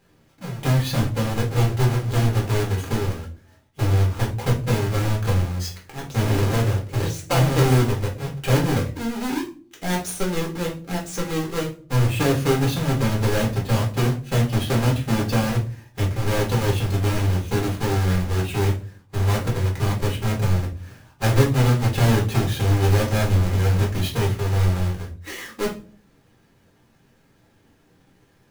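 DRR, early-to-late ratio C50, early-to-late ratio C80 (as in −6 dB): −3.0 dB, 10.0 dB, 16.0 dB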